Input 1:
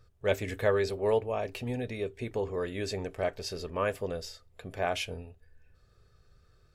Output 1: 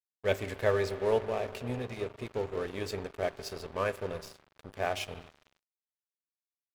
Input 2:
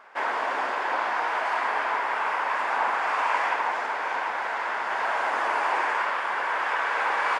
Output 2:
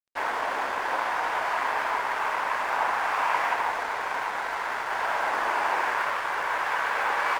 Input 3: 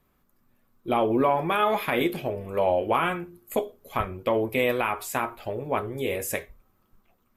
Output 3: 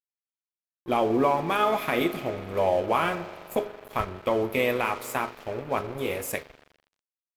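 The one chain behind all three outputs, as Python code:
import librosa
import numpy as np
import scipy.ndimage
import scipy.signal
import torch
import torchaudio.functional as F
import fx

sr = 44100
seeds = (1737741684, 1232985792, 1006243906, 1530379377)

y = fx.rev_spring(x, sr, rt60_s=3.6, pass_ms=(41,), chirp_ms=75, drr_db=10.5)
y = np.sign(y) * np.maximum(np.abs(y) - 10.0 ** (-41.0 / 20.0), 0.0)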